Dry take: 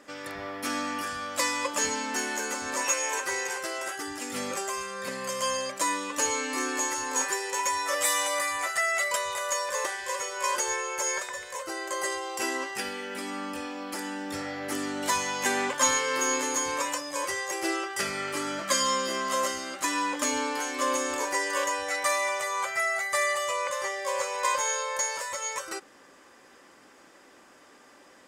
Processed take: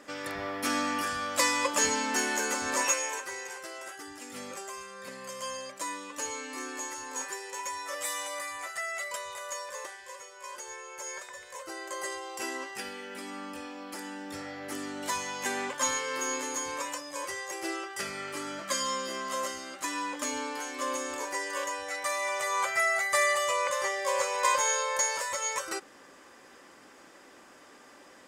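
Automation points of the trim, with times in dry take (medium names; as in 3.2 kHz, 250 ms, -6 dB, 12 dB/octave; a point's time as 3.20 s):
2.81 s +1.5 dB
3.31 s -8.5 dB
9.61 s -8.5 dB
10.41 s -15.5 dB
11.70 s -5.5 dB
22.12 s -5.5 dB
22.54 s +1 dB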